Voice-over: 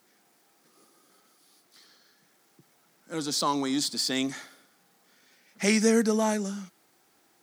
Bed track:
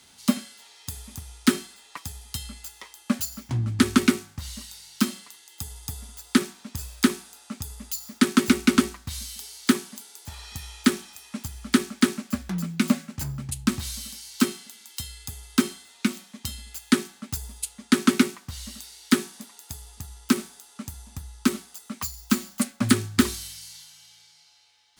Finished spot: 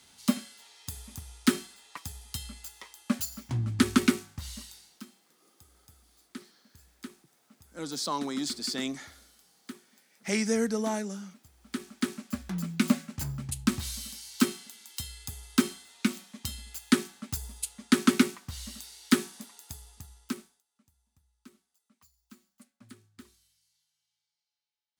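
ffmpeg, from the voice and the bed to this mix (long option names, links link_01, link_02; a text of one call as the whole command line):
ffmpeg -i stem1.wav -i stem2.wav -filter_complex "[0:a]adelay=4650,volume=-5dB[link_01];[1:a]volume=16.5dB,afade=type=out:start_time=4.6:duration=0.42:silence=0.105925,afade=type=in:start_time=11.57:duration=1.2:silence=0.0944061,afade=type=out:start_time=19.46:duration=1.17:silence=0.0375837[link_02];[link_01][link_02]amix=inputs=2:normalize=0" out.wav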